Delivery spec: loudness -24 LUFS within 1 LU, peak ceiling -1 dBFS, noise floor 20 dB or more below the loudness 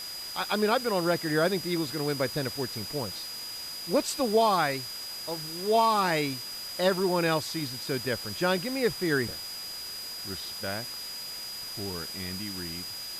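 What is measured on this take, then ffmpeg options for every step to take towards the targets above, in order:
steady tone 4900 Hz; tone level -37 dBFS; noise floor -39 dBFS; noise floor target -49 dBFS; loudness -29.0 LUFS; peak -12.0 dBFS; loudness target -24.0 LUFS
-> -af "bandreject=f=4.9k:w=30"
-af "afftdn=nr=10:nf=-39"
-af "volume=5dB"

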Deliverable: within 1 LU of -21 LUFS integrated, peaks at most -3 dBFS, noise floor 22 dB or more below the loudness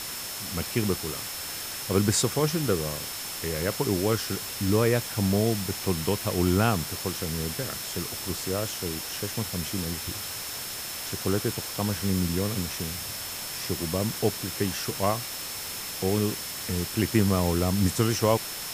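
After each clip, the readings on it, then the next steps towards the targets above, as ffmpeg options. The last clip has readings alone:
steady tone 5300 Hz; tone level -41 dBFS; noise floor -36 dBFS; noise floor target -50 dBFS; loudness -27.5 LUFS; peak -8.0 dBFS; loudness target -21.0 LUFS
-> -af "bandreject=f=5.3k:w=30"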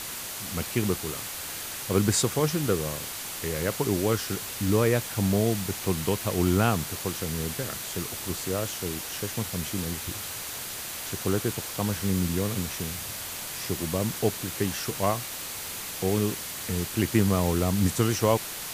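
steady tone none; noise floor -36 dBFS; noise floor target -50 dBFS
-> -af "afftdn=nr=14:nf=-36"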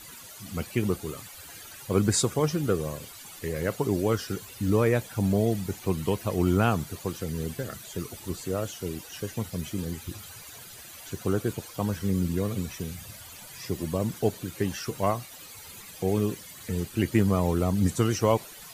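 noise floor -46 dBFS; noise floor target -51 dBFS
-> -af "afftdn=nr=6:nf=-46"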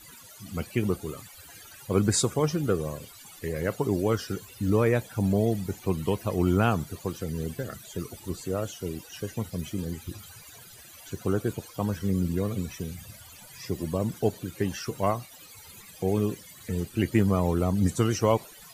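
noise floor -49 dBFS; noise floor target -51 dBFS
-> -af "afftdn=nr=6:nf=-49"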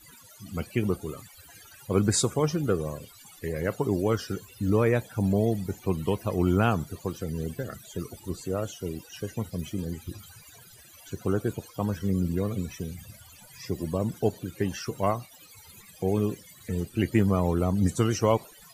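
noise floor -52 dBFS; loudness -28.5 LUFS; peak -9.0 dBFS; loudness target -21.0 LUFS
-> -af "volume=7.5dB,alimiter=limit=-3dB:level=0:latency=1"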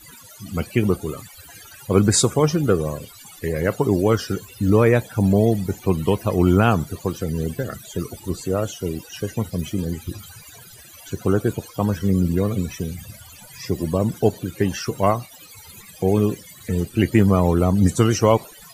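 loudness -21.0 LUFS; peak -3.0 dBFS; noise floor -45 dBFS

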